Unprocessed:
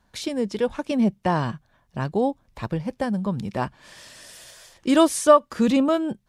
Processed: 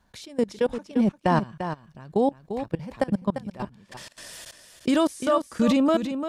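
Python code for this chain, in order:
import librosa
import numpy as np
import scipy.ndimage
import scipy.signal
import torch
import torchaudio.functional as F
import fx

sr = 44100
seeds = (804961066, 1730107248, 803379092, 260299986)

y = fx.level_steps(x, sr, step_db=23)
y = y + 10.0 ** (-9.0 / 20.0) * np.pad(y, (int(346 * sr / 1000.0), 0))[:len(y)]
y = fx.band_squash(y, sr, depth_pct=40, at=(2.79, 3.22))
y = F.gain(torch.from_numpy(y), 3.5).numpy()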